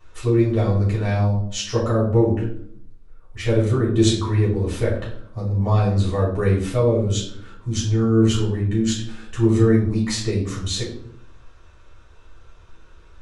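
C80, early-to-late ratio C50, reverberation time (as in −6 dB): 8.5 dB, 5.0 dB, 0.70 s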